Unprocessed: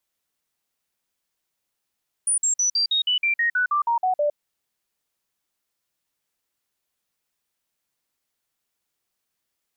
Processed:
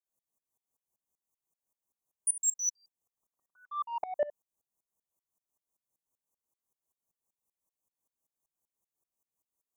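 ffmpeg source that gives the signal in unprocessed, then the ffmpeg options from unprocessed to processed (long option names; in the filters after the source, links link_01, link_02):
-f lavfi -i "aevalsrc='0.126*clip(min(mod(t,0.16),0.11-mod(t,0.16))/0.005,0,1)*sin(2*PI*9430*pow(2,-floor(t/0.16)/3)*mod(t,0.16))':duration=2.08:sample_rate=44100"
-af "asuperstop=centerf=2700:order=20:qfactor=0.56,asoftclip=type=tanh:threshold=-19dB,aeval=exprs='val(0)*pow(10,-23*if(lt(mod(-5.2*n/s,1),2*abs(-5.2)/1000),1-mod(-5.2*n/s,1)/(2*abs(-5.2)/1000),(mod(-5.2*n/s,1)-2*abs(-5.2)/1000)/(1-2*abs(-5.2)/1000))/20)':channel_layout=same"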